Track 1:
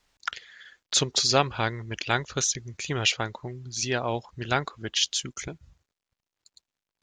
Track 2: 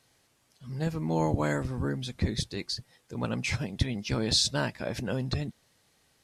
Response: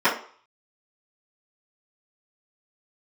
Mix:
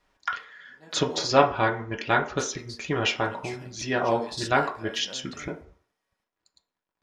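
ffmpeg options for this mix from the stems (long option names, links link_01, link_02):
-filter_complex "[0:a]highshelf=frequency=2900:gain=-11.5,volume=1dB,asplit=3[link_01][link_02][link_03];[link_02]volume=-18dB[link_04];[1:a]highpass=frequency=530:poles=1,volume=-9dB,asplit=3[link_05][link_06][link_07];[link_05]atrim=end=1.25,asetpts=PTS-STARTPTS,afade=type=out:start_time=1.246:duration=0.004:curve=hsin[link_08];[link_06]atrim=start=1.25:end=2.39,asetpts=PTS-STARTPTS,volume=0[link_09];[link_07]atrim=start=2.39,asetpts=PTS-STARTPTS,afade=type=in:duration=0.004:curve=hsin[link_10];[link_08][link_09][link_10]concat=n=3:v=0:a=1,asplit=2[link_11][link_12];[link_12]volume=-22.5dB[link_13];[link_03]apad=whole_len=275150[link_14];[link_11][link_14]sidechaingate=range=-14dB:threshold=-46dB:ratio=16:detection=peak[link_15];[2:a]atrim=start_sample=2205[link_16];[link_04][link_13]amix=inputs=2:normalize=0[link_17];[link_17][link_16]afir=irnorm=-1:irlink=0[link_18];[link_01][link_15][link_18]amix=inputs=3:normalize=0"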